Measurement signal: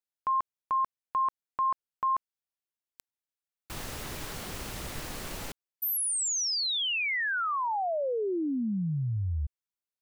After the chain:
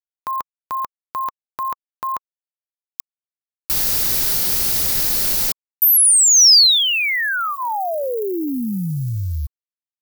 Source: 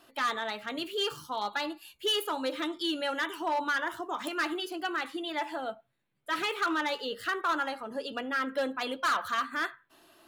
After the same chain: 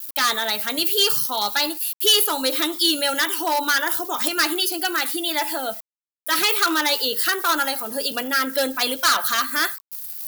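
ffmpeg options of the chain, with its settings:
ffmpeg -i in.wav -filter_complex "[0:a]aeval=exprs='val(0)*gte(abs(val(0)),0.00178)':channel_layout=same,acrossover=split=7200[link_01][link_02];[link_02]acompressor=threshold=-55dB:ratio=4:attack=1:release=60[link_03];[link_01][link_03]amix=inputs=2:normalize=0,bandreject=frequency=1100:width=9.6,aexciter=amount=1.6:drive=7:freq=4200,aemphasis=mode=production:type=75fm,volume=8dB" out.wav

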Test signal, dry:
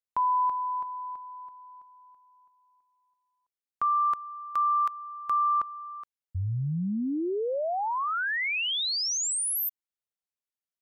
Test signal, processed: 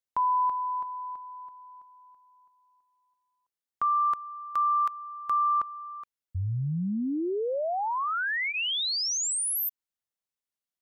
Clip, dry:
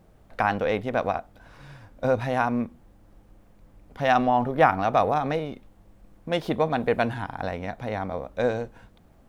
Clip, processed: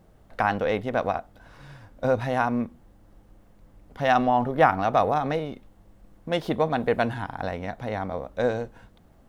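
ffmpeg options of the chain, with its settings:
ffmpeg -i in.wav -af "bandreject=frequency=2400:width=19" out.wav

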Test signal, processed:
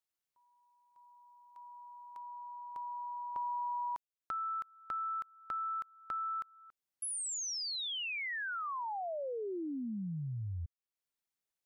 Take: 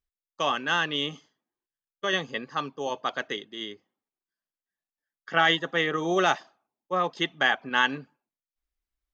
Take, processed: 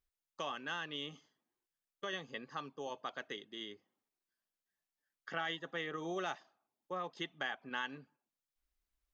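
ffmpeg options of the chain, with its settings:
ffmpeg -i in.wav -af "acompressor=threshold=-50dB:ratio=2" out.wav

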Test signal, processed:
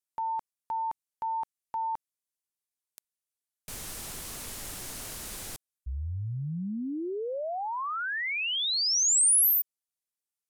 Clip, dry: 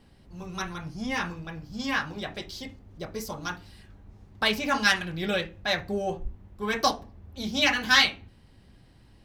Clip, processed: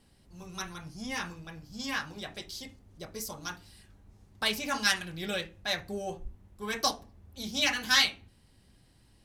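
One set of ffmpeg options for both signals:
ffmpeg -i in.wav -af "equalizer=frequency=10000:width_type=o:width=1.8:gain=12,volume=-7dB" out.wav

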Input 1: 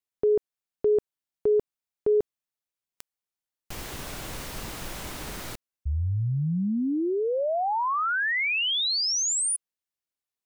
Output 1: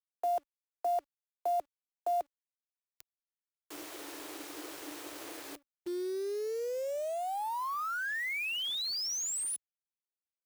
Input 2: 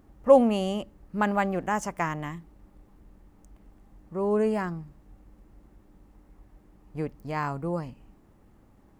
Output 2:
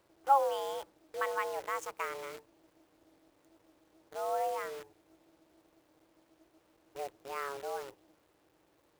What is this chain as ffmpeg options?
ffmpeg -i in.wav -af "afreqshift=280,acrusher=bits=7:dc=4:mix=0:aa=0.000001,highpass=47,volume=-9dB" out.wav

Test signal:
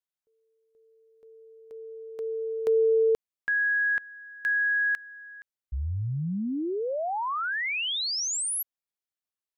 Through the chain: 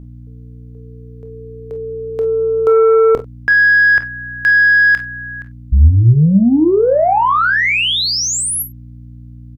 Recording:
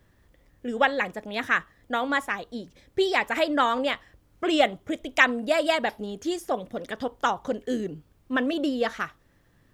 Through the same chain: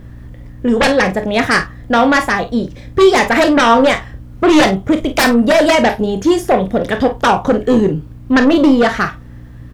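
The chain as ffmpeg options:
ffmpeg -i in.wav -filter_complex "[0:a]lowshelf=frequency=150:gain=7,aeval=exprs='val(0)+0.00316*(sin(2*PI*60*n/s)+sin(2*PI*2*60*n/s)/2+sin(2*PI*3*60*n/s)/3+sin(2*PI*4*60*n/s)/4+sin(2*PI*5*60*n/s)/5)':channel_layout=same,aeval=exprs='0.668*sin(PI/2*6.31*val(0)/0.668)':channel_layout=same,highshelf=frequency=3000:gain=-7,asplit=2[link_01][link_02];[link_02]adelay=42,volume=-13dB[link_03];[link_01][link_03]amix=inputs=2:normalize=0,asplit=2[link_04][link_05];[link_05]aecho=0:1:26|52:0.282|0.2[link_06];[link_04][link_06]amix=inputs=2:normalize=0,volume=-2.5dB" out.wav

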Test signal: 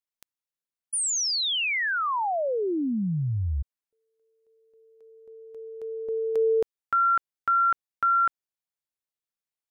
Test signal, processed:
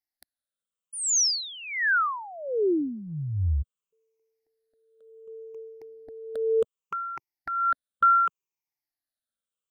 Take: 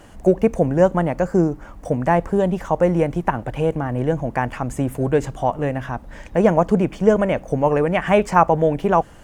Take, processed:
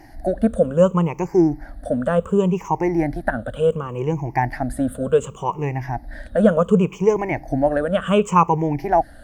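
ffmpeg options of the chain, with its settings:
ffmpeg -i in.wav -af "afftfilt=real='re*pow(10,20/40*sin(2*PI*(0.75*log(max(b,1)*sr/1024/100)/log(2)-(-0.68)*(pts-256)/sr)))':imag='im*pow(10,20/40*sin(2*PI*(0.75*log(max(b,1)*sr/1024/100)/log(2)-(-0.68)*(pts-256)/sr)))':win_size=1024:overlap=0.75,volume=-5dB" out.wav

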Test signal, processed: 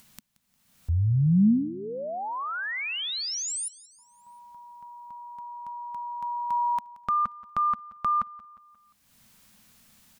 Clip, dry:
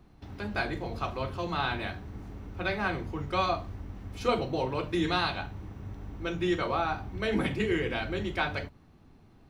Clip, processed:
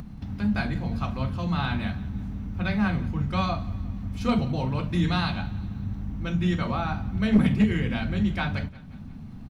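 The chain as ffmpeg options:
ffmpeg -i in.wav -filter_complex "[0:a]lowshelf=frequency=280:width_type=q:width=3:gain=8,acompressor=mode=upward:threshold=-31dB:ratio=2.5,aeval=exprs='clip(val(0),-1,0.188)':channel_layout=same,asplit=2[link_01][link_02];[link_02]aecho=0:1:177|354|531|708:0.0944|0.0491|0.0255|0.0133[link_03];[link_01][link_03]amix=inputs=2:normalize=0" out.wav

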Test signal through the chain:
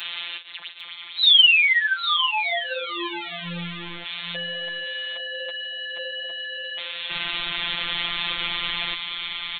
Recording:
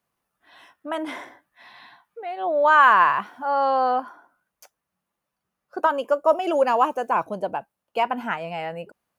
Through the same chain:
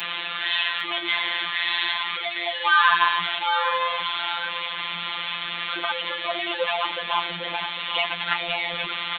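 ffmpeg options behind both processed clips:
ffmpeg -i in.wav -filter_complex "[0:a]aeval=exprs='val(0)+0.5*0.112*sgn(val(0))':channel_layout=same,tiltshelf=frequency=1300:gain=-10,flanger=delay=4.6:depth=5.4:regen=-10:speed=1.7:shape=sinusoidal,acrossover=split=150[link_01][link_02];[link_01]acrusher=bits=4:dc=4:mix=0:aa=0.000001[link_03];[link_03][link_02]amix=inputs=2:normalize=0,aresample=8000,aresample=44100,afftfilt=real='hypot(re,im)*cos(PI*b)':imag='0':win_size=1024:overlap=0.75,aecho=1:1:802:0.299,crystalizer=i=3.5:c=0" out.wav

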